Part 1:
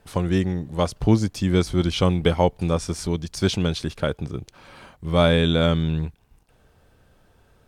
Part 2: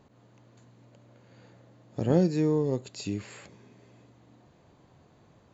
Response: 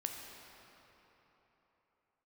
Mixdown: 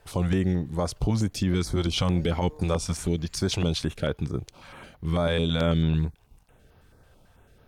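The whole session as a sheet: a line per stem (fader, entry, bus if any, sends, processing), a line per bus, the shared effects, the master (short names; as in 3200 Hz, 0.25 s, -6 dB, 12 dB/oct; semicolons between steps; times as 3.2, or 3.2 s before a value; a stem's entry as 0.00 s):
+1.0 dB, 0.00 s, no send, stepped notch 9.1 Hz 220–7900 Hz
-14.5 dB, 0.00 s, no send, HPF 610 Hz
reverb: off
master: limiter -15.5 dBFS, peak gain reduction 11 dB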